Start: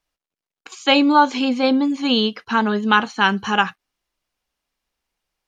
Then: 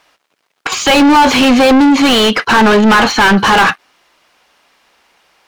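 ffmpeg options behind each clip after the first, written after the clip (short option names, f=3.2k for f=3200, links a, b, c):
-filter_complex "[0:a]asplit=2[a][b];[b]highpass=f=720:p=1,volume=37dB,asoftclip=type=tanh:threshold=-2dB[c];[a][c]amix=inputs=2:normalize=0,lowpass=f=2.1k:p=1,volume=-6dB,volume=1.5dB"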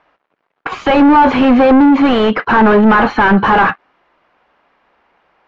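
-af "lowpass=1.6k"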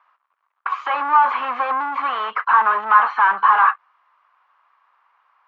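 -filter_complex "[0:a]highpass=f=1.1k:t=q:w=5,acrossover=split=3500[a][b];[b]acompressor=threshold=-46dB:ratio=4:attack=1:release=60[c];[a][c]amix=inputs=2:normalize=0,volume=-10.5dB"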